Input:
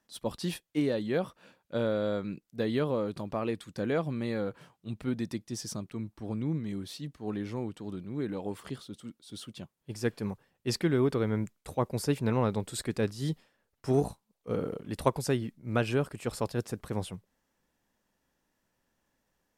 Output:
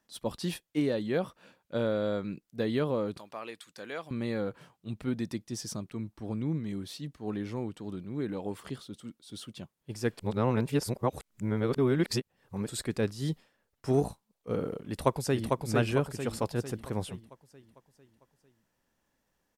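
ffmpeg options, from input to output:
ffmpeg -i in.wav -filter_complex "[0:a]asettb=1/sr,asplit=3[link_01][link_02][link_03];[link_01]atrim=end=3.174[link_04];[link_02]atrim=start=3.17:end=4.11,asetpts=PTS-STARTPTS,afade=type=in:duration=0.004:curve=qsin,afade=type=out:start_time=0.936:duration=0.004:curve=qsin,highpass=frequency=1500:poles=1[link_05];[link_03]atrim=start=4.106[link_06];[link_04][link_05]acrossfade=duration=0.004:curve1=hsin:curve2=qsin[link_07];[link_07][link_06]acrossfade=duration=0.004:curve1=qsin:curve2=hsin,asplit=2[link_08][link_09];[link_09]afade=type=in:start_time=14.82:duration=0.01,afade=type=out:start_time=15.57:duration=0.01,aecho=0:1:450|900|1350|1800|2250|2700|3150:0.707946|0.353973|0.176986|0.0884932|0.0442466|0.0221233|0.0110617[link_10];[link_08][link_10]amix=inputs=2:normalize=0,asplit=3[link_11][link_12][link_13];[link_11]atrim=end=10.192[link_14];[link_12]atrim=start=10.188:end=12.682,asetpts=PTS-STARTPTS,areverse[link_15];[link_13]atrim=start=12.678[link_16];[link_14][link_15]acrossfade=duration=0.004:curve1=hsin:curve2=hsin[link_17];[link_17][link_16]acrossfade=duration=0.004:curve1=hsin:curve2=hsin" out.wav

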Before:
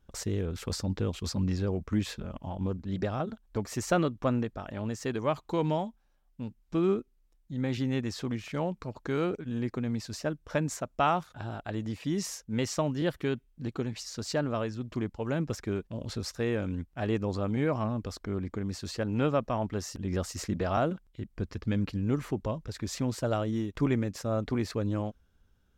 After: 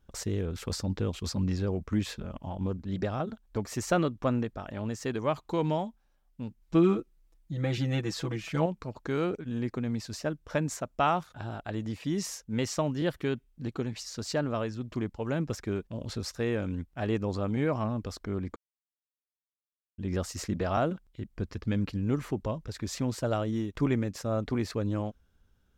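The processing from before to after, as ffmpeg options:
ffmpeg -i in.wav -filter_complex "[0:a]asettb=1/sr,asplit=3[link_01][link_02][link_03];[link_01]atrim=end=6.614[link_04];[link_02]atrim=start=6.61:end=8.66,asetpts=PTS-STARTPTS,afade=type=in:duration=0.004:curve=qsin,afade=type=out:start_time=2.046:duration=0.004:curve=qsin,aecho=1:1:6.1:0.96,atrim=end_sample=90405[link_05];[link_03]atrim=start=8.656[link_06];[link_04][link_05]acrossfade=duration=0.004:curve1=hsin:curve2=qsin[link_07];[link_07][link_06]acrossfade=duration=0.004:curve1=qsin:curve2=hsin,asplit=3[link_08][link_09][link_10];[link_08]atrim=end=18.56,asetpts=PTS-STARTPTS,afade=type=out:start_time=18.556:duration=0.004:curve=hsin[link_11];[link_09]atrim=start=18.56:end=19.98,asetpts=PTS-STARTPTS,volume=0[link_12];[link_10]atrim=start=19.98,asetpts=PTS-STARTPTS,afade=type=in:duration=0.004:curve=hsin[link_13];[link_11][link_12][link_13]concat=n=3:v=0:a=1" out.wav

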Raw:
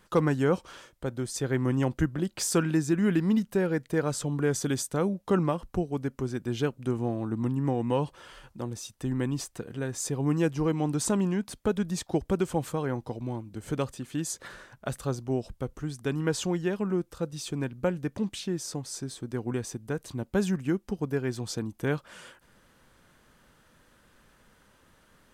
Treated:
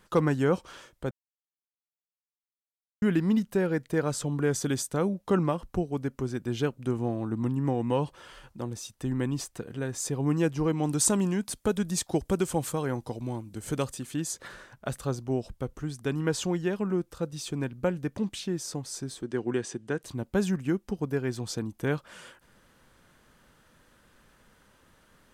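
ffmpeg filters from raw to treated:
ffmpeg -i in.wav -filter_complex "[0:a]asettb=1/sr,asplit=3[link_01][link_02][link_03];[link_01]atrim=end=10.834[link_04];[link_02]atrim=start=10.83:end=14.14,asetpts=PTS-STARTPTS,afade=type=in:duration=0.004:curve=qsin,afade=type=out:start_time=3.306:duration=0.004:curve=qsin,equalizer=frequency=10000:width=0.47:gain=8.5[link_05];[link_03]atrim=start=14.136[link_06];[link_04][link_05]acrossfade=duration=0.004:curve1=hsin:curve2=qsin[link_07];[link_07][link_06]acrossfade=duration=0.004:curve1=qsin:curve2=hsin,asettb=1/sr,asplit=3[link_08][link_09][link_10];[link_08]atrim=end=19.224[link_11];[link_09]atrim=start=19.22:end=20.03,asetpts=PTS-STARTPTS,afade=type=in:duration=0.004:curve=qsin,afade=type=out:start_time=0.806:duration=0.004:curve=qsin,highpass=140,equalizer=frequency=360:width_type=q:width=4:gain=6,equalizer=frequency=1700:width_type=q:width=4:gain=6,equalizer=frequency=3000:width_type=q:width=4:gain=6,lowpass=frequency=9100:width=0.5412,lowpass=frequency=9100:width=1.3066[link_12];[link_10]atrim=start=20.026[link_13];[link_11][link_12]acrossfade=duration=0.004:curve1=hsin:curve2=qsin[link_14];[link_14][link_13]acrossfade=duration=0.004:curve1=qsin:curve2=hsin,asplit=3[link_15][link_16][link_17];[link_15]atrim=end=1.11,asetpts=PTS-STARTPTS,afade=type=out:start_time=1.106:duration=0.004:curve=hsin[link_18];[link_16]atrim=start=1.11:end=3.02,asetpts=PTS-STARTPTS,volume=0[link_19];[link_17]atrim=start=3.02,asetpts=PTS-STARTPTS,afade=type=in:duration=0.004:curve=hsin[link_20];[link_18][link_19][link_20]concat=n=3:v=0:a=1" out.wav

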